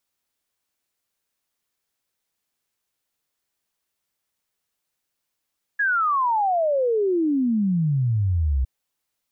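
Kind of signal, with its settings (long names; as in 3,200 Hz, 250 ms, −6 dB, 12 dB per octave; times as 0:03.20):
exponential sine sweep 1,700 Hz → 62 Hz 2.86 s −18 dBFS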